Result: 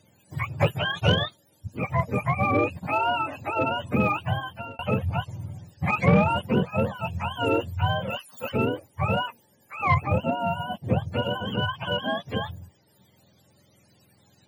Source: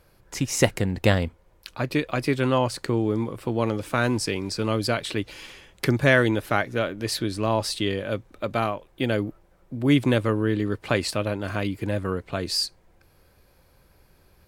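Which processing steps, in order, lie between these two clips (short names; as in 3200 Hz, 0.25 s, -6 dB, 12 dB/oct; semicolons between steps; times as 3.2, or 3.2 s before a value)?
spectrum mirrored in octaves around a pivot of 550 Hz; 9.94–11.12 band shelf 2300 Hz -9 dB 2.8 oct; soft clip -12 dBFS, distortion -17 dB; 4.32–4.79 fade out; 8.1–8.52 tilt +4 dB/oct; gain +1.5 dB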